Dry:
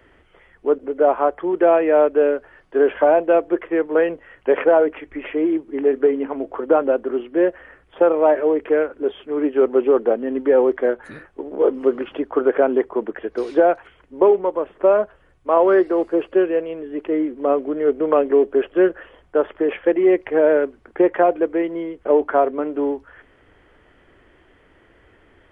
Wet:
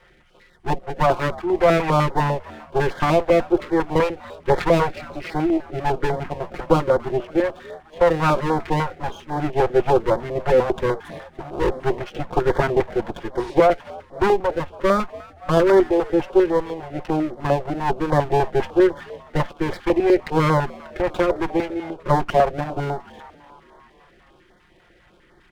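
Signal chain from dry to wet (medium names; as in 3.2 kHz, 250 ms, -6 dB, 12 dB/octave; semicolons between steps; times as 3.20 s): comb filter that takes the minimum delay 5.6 ms; frequency-shifting echo 286 ms, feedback 64%, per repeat +77 Hz, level -22 dB; step-sequenced notch 10 Hz 290–2600 Hz; trim +2 dB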